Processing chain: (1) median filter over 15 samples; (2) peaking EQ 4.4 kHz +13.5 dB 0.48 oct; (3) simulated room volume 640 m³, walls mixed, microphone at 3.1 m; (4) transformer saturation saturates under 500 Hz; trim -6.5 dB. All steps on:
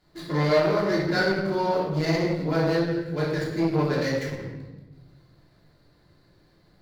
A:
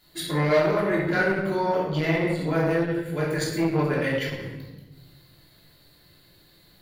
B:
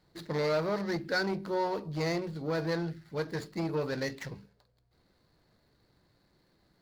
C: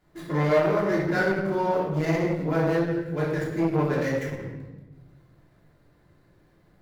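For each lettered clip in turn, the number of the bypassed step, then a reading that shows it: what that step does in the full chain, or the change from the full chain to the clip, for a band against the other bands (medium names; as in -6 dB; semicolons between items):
1, 2 kHz band +2.5 dB; 3, crest factor change -1.5 dB; 2, 4 kHz band -8.5 dB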